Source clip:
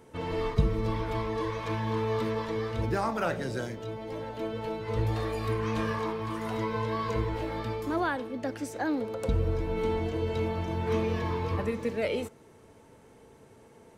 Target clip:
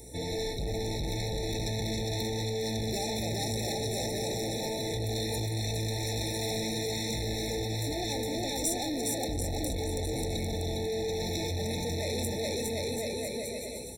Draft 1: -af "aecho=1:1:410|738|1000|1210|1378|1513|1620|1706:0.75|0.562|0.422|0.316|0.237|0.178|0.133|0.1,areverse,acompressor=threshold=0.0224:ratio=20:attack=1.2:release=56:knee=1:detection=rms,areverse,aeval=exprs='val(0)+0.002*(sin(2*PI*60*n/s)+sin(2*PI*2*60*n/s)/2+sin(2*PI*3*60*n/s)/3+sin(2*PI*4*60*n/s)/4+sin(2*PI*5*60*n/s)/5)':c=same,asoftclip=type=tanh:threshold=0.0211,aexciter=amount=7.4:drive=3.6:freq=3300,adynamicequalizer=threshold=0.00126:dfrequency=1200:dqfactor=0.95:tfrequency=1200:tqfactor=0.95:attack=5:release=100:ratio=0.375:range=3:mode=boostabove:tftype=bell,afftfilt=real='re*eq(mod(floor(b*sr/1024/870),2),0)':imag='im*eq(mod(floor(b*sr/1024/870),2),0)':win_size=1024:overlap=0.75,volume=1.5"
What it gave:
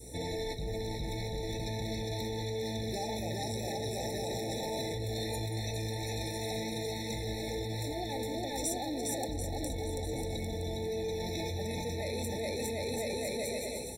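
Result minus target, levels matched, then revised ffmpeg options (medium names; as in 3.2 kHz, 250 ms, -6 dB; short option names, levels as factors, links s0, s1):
compression: peak gain reduction +9.5 dB; 1 kHz band +2.5 dB
-af "aecho=1:1:410|738|1000|1210|1378|1513|1620|1706:0.75|0.562|0.422|0.316|0.237|0.178|0.133|0.1,areverse,acompressor=threshold=0.0708:ratio=20:attack=1.2:release=56:knee=1:detection=rms,areverse,aeval=exprs='val(0)+0.002*(sin(2*PI*60*n/s)+sin(2*PI*2*60*n/s)/2+sin(2*PI*3*60*n/s)/3+sin(2*PI*4*60*n/s)/4+sin(2*PI*5*60*n/s)/5)':c=same,asoftclip=type=tanh:threshold=0.0211,aexciter=amount=7.4:drive=3.6:freq=3300,afftfilt=real='re*eq(mod(floor(b*sr/1024/870),2),0)':imag='im*eq(mod(floor(b*sr/1024/870),2),0)':win_size=1024:overlap=0.75,volume=1.5"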